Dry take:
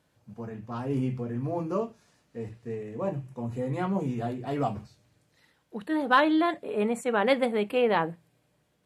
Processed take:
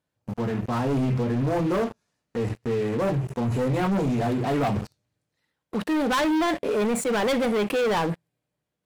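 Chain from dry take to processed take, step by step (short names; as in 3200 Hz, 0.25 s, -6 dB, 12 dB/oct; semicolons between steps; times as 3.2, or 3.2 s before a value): sample leveller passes 5; limiter -17.5 dBFS, peak gain reduction 8 dB; gain -2.5 dB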